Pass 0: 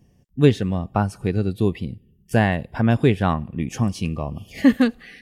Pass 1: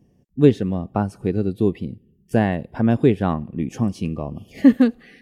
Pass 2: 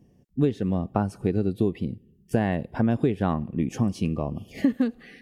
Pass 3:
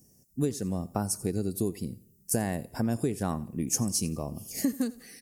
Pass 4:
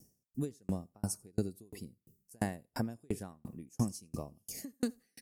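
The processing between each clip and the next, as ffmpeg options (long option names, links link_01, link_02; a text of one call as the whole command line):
ffmpeg -i in.wav -af "equalizer=frequency=320:width_type=o:width=2.5:gain=9.5,volume=-6.5dB" out.wav
ffmpeg -i in.wav -af "acompressor=threshold=-18dB:ratio=12" out.wav
ffmpeg -i in.wav -af "aexciter=amount=14.2:drive=7.3:freq=5100,aecho=1:1:87|174:0.0944|0.0302,volume=-6dB" out.wav
ffmpeg -i in.wav -af "aeval=exprs='val(0)*pow(10,-40*if(lt(mod(2.9*n/s,1),2*abs(2.9)/1000),1-mod(2.9*n/s,1)/(2*abs(2.9)/1000),(mod(2.9*n/s,1)-2*abs(2.9)/1000)/(1-2*abs(2.9)/1000))/20)':channel_layout=same,volume=1.5dB" out.wav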